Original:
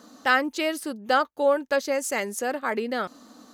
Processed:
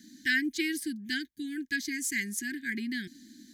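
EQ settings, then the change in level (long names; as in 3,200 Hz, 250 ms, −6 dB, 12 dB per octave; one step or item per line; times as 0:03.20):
Chebyshev band-stop filter 350–970 Hz, order 4
Chebyshev band-stop filter 740–1,600 Hz, order 5
notch filter 2,700 Hz, Q 6.2
0.0 dB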